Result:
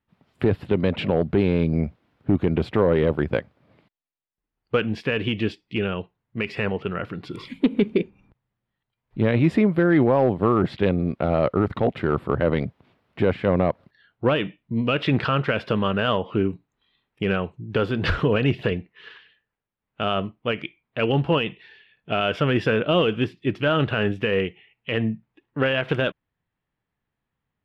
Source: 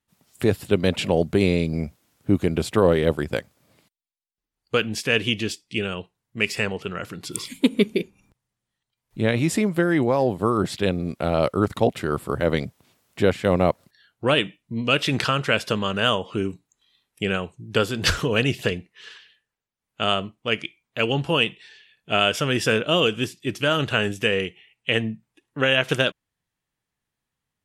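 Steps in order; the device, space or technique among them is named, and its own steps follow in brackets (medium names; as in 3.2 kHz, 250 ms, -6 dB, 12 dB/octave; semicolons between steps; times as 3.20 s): limiter into clipper (peak limiter -11 dBFS, peak gain reduction 6 dB; hard clipper -13.5 dBFS, distortion -23 dB); distance through air 390 m; trim +4 dB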